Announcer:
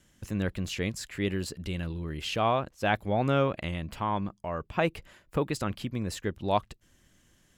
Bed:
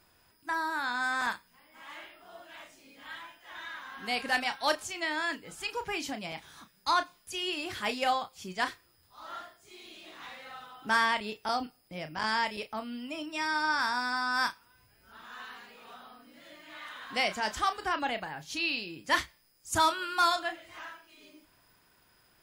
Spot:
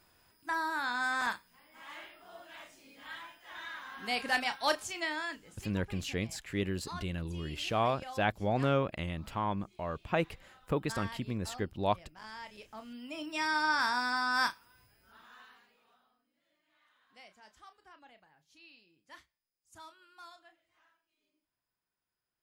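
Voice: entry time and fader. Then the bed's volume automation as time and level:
5.35 s, −3.5 dB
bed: 0:05.02 −1.5 dB
0:05.87 −17 dB
0:12.38 −17 dB
0:13.32 −0.5 dB
0:14.79 −0.5 dB
0:16.32 −26.5 dB

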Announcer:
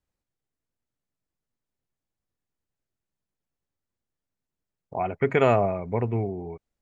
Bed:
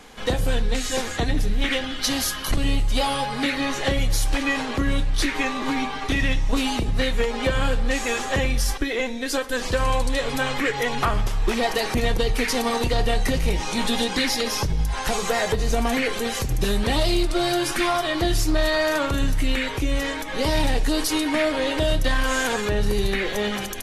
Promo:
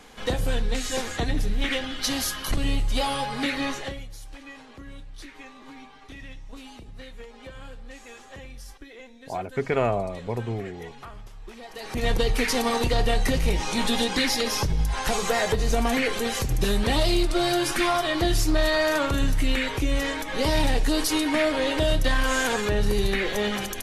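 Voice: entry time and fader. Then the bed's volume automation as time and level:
4.35 s, −3.5 dB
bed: 0:03.69 −3 dB
0:04.10 −20 dB
0:11.67 −20 dB
0:12.09 −1 dB

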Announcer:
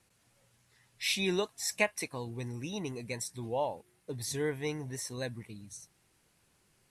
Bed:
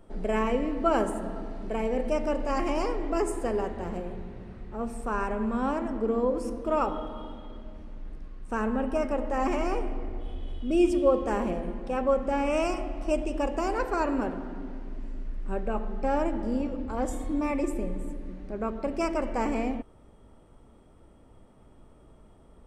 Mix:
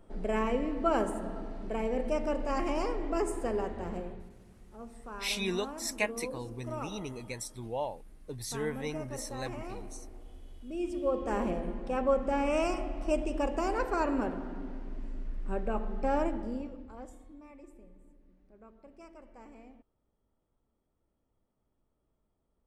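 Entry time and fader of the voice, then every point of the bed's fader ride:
4.20 s, −2.0 dB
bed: 0:04.03 −3.5 dB
0:04.38 −13.5 dB
0:10.77 −13.5 dB
0:11.40 −2.5 dB
0:16.24 −2.5 dB
0:17.42 −24 dB

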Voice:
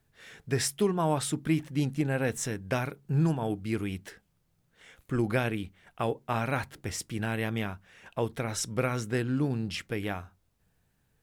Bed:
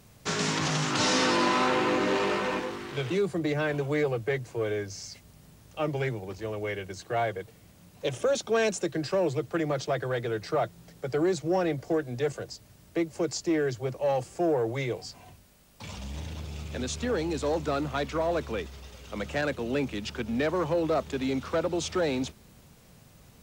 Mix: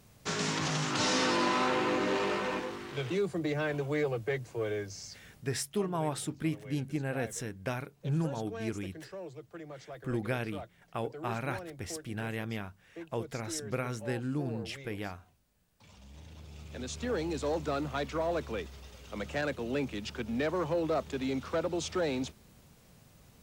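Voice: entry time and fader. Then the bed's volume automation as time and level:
4.95 s, −5.5 dB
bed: 0:05.36 −4 dB
0:05.58 −17 dB
0:15.88 −17 dB
0:17.14 −4 dB

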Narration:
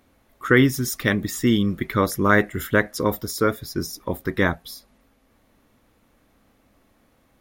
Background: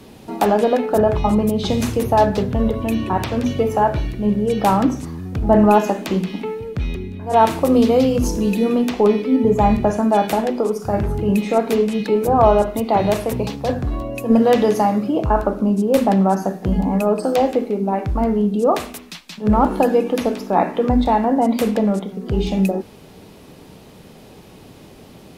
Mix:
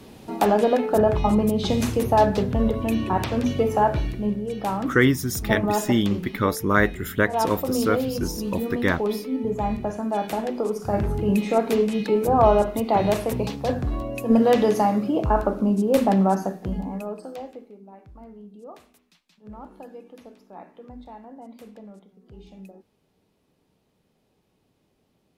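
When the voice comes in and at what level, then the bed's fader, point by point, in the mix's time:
4.45 s, −2.0 dB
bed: 0:04.14 −3 dB
0:04.44 −10.5 dB
0:10.01 −10.5 dB
0:10.96 −3.5 dB
0:16.33 −3.5 dB
0:17.83 −26 dB

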